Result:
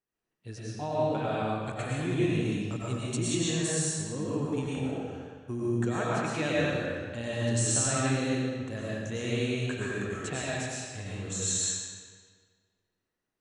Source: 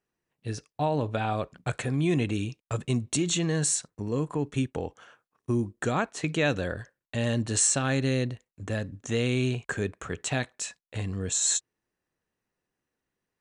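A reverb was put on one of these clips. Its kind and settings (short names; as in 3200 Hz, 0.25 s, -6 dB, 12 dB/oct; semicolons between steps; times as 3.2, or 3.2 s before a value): digital reverb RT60 1.7 s, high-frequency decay 0.85×, pre-delay 70 ms, DRR -7 dB; gain -9 dB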